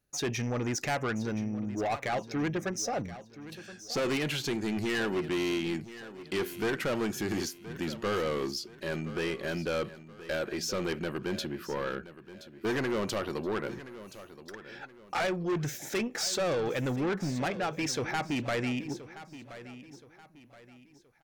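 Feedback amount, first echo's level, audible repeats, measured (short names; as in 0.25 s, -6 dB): 36%, -15.0 dB, 3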